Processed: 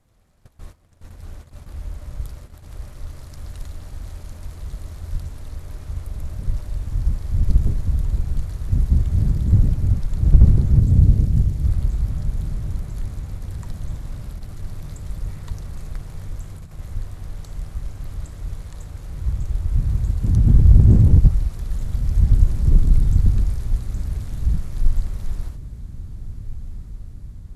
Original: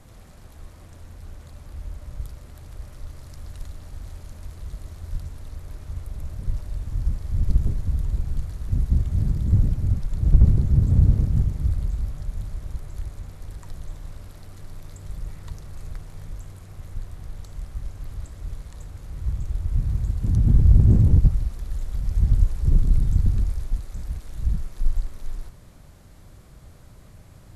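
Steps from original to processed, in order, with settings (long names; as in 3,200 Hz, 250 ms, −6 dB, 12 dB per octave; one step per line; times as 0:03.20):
0:10.80–0:11.64: parametric band 1,100 Hz −6.5 dB 1.8 octaves
noise gate −40 dBFS, range −18 dB
feedback delay with all-pass diffusion 1,621 ms, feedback 59%, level −15 dB
level +3.5 dB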